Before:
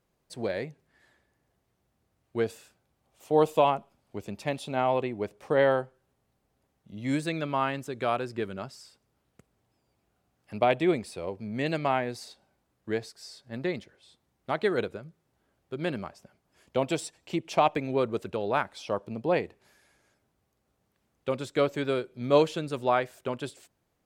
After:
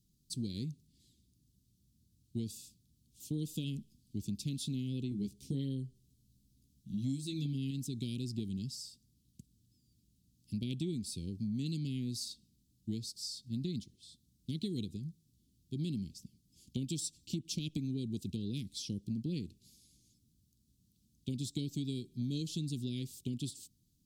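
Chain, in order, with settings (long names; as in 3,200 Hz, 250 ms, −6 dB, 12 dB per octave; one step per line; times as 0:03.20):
inverse Chebyshev band-stop filter 690–1,500 Hz, stop band 70 dB
0:05.10–0:07.71: double-tracking delay 15 ms −4 dB
downward compressor 8 to 1, threshold −38 dBFS, peak gain reduction 14.5 dB
level +5 dB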